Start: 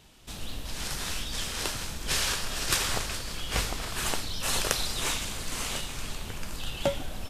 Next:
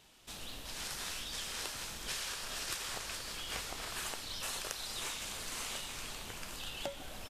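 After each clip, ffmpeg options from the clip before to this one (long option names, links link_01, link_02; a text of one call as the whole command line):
ffmpeg -i in.wav -af "lowshelf=frequency=260:gain=-10,acompressor=threshold=-33dB:ratio=6,aecho=1:1:778:0.224,volume=-4dB" out.wav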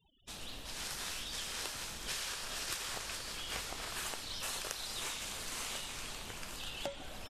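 ffmpeg -i in.wav -af "afftfilt=real='re*gte(hypot(re,im),0.00178)':imag='im*gte(hypot(re,im),0.00178)':win_size=1024:overlap=0.75" out.wav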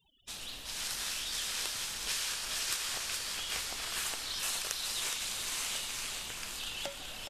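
ffmpeg -i in.wav -filter_complex "[0:a]tiltshelf=frequency=1300:gain=-4.5,asplit=2[link_01][link_02];[link_02]aecho=0:1:417:0.473[link_03];[link_01][link_03]amix=inputs=2:normalize=0,volume=1dB" out.wav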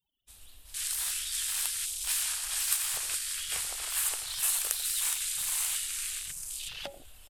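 ffmpeg -i in.wav -filter_complex "[0:a]aexciter=amount=4.7:drive=3.6:freq=8000,asplit=2[link_01][link_02];[link_02]adelay=87.46,volume=-13dB,highshelf=frequency=4000:gain=-1.97[link_03];[link_01][link_03]amix=inputs=2:normalize=0,afwtdn=0.00891" out.wav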